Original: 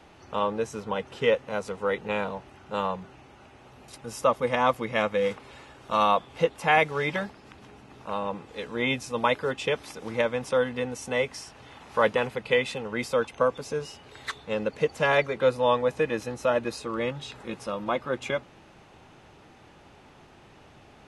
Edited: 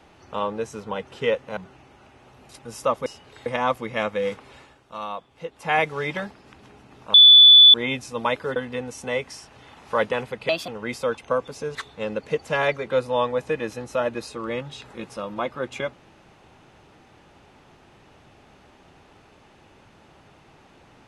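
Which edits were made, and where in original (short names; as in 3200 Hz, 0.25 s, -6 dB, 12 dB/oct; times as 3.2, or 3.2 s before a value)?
1.57–2.96 cut
5.55–6.76 dip -10.5 dB, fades 0.29 s
8.13–8.73 bleep 3470 Hz -6.5 dBFS
9.55–10.6 cut
12.53–12.78 speed 131%
13.85–14.25 move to 4.45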